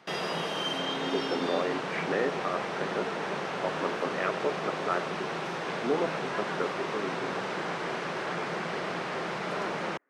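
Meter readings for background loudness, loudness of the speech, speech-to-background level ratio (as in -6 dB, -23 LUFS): -33.0 LUFS, -34.5 LUFS, -1.5 dB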